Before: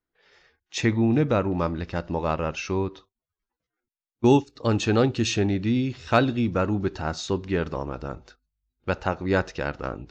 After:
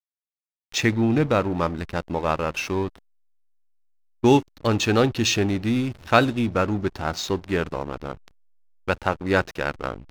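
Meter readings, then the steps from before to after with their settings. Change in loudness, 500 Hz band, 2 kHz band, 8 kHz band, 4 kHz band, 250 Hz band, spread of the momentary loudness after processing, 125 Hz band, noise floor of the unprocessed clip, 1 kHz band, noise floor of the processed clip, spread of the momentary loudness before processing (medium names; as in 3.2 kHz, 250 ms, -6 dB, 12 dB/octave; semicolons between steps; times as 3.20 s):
+1.5 dB, +1.5 dB, +4.5 dB, no reading, +5.0 dB, +0.5 dB, 11 LU, 0.0 dB, under -85 dBFS, +3.5 dB, under -85 dBFS, 11 LU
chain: tilt shelf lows -3 dB, about 920 Hz; hysteresis with a dead band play -32 dBFS; trim +3.5 dB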